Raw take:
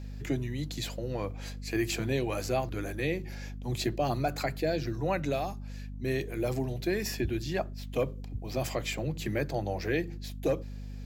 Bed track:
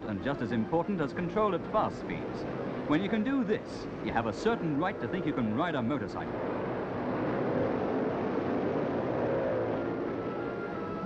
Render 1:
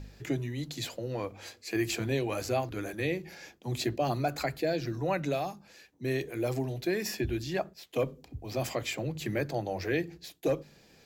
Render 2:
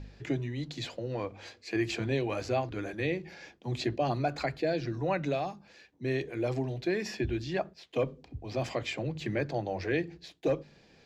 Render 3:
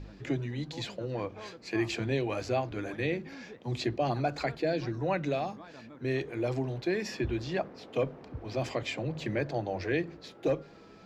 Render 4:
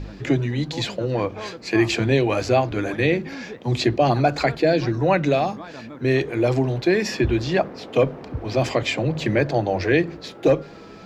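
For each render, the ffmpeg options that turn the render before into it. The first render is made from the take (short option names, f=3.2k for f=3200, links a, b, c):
-af "bandreject=f=50:t=h:w=4,bandreject=f=100:t=h:w=4,bandreject=f=150:t=h:w=4,bandreject=f=200:t=h:w=4,bandreject=f=250:t=h:w=4"
-af "lowpass=4.7k,bandreject=f=1.3k:w=25"
-filter_complex "[1:a]volume=-19dB[a];[0:a][a]amix=inputs=2:normalize=0"
-af "volume=11.5dB"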